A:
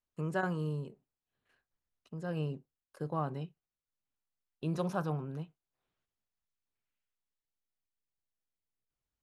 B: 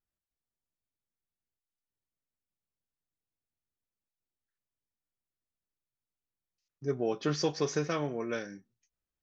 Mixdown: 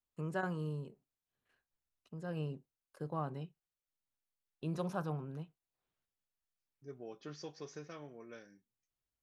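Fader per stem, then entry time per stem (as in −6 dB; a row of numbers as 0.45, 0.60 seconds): −4.0, −17.0 decibels; 0.00, 0.00 seconds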